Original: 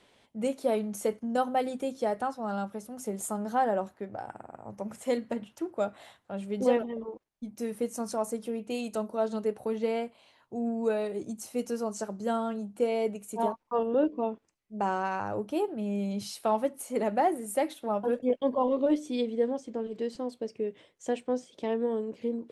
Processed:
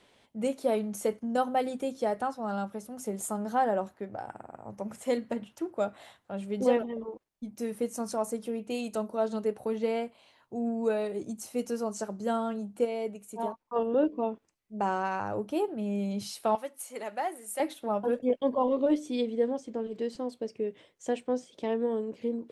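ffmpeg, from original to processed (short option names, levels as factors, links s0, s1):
-filter_complex "[0:a]asettb=1/sr,asplit=3[s0][s1][s2];[s0]atrim=end=16.554[s3];[s1]atrim=start=16.55:end=17.6,asetpts=PTS-STARTPTS,afade=t=in:d=0.004:c=qsin,afade=t=out:st=1.046:d=0.004:c=qsin,highpass=f=1400:p=1[s4];[s2]atrim=start=17.596[s5];[s3][s4]acrossfade=d=0.004:c1=hsin:c2=qsin[s6];[s6][s5]acrossfade=d=0.004:c1=qsin:c2=hsin,asplit=3[s7][s8][s9];[s7]atrim=end=12.852[s10];[s8]atrim=start=12.848:end=13.762,asetpts=PTS-STARTPTS,volume=0.596[s11];[s9]atrim=start=13.758[s12];[s10][s11]acrossfade=d=0.004:c1=hsin:c2=hsin[s13];[s13][s12]acrossfade=d=0.004:c1=hsin:c2=hsin"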